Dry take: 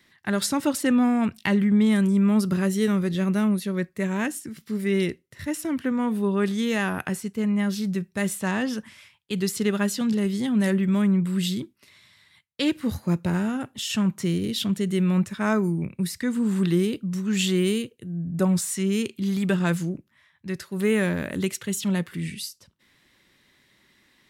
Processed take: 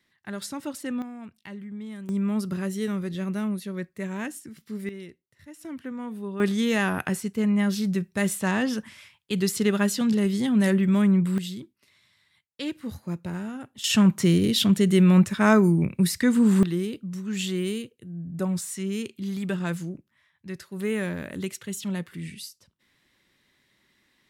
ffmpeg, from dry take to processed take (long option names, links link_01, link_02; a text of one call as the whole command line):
ffmpeg -i in.wav -af "asetnsamples=nb_out_samples=441:pad=0,asendcmd='1.02 volume volume -18dB;2.09 volume volume -6dB;4.89 volume volume -17dB;5.61 volume volume -10dB;6.4 volume volume 1dB;11.38 volume volume -8dB;13.84 volume volume 5dB;16.63 volume volume -5.5dB',volume=-10dB" out.wav